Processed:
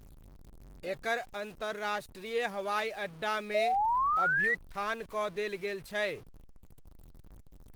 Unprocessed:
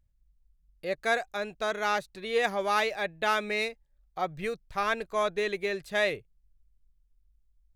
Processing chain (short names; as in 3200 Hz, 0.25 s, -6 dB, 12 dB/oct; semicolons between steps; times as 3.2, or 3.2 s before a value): zero-crossing step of -39.5 dBFS; painted sound rise, 3.54–4.55, 610–2000 Hz -22 dBFS; gain -6 dB; Opus 20 kbps 48000 Hz